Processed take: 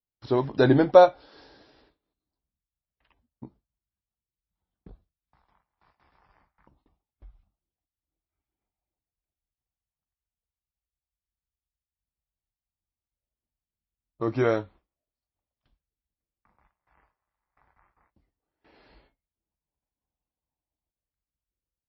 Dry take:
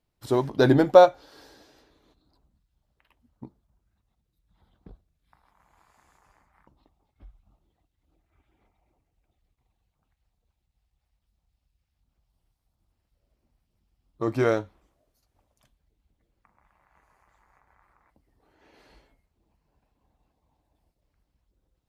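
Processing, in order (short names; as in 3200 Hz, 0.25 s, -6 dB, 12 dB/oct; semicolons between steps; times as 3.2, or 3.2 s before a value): gate with hold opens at -50 dBFS; air absorption 52 m; MP3 24 kbps 16000 Hz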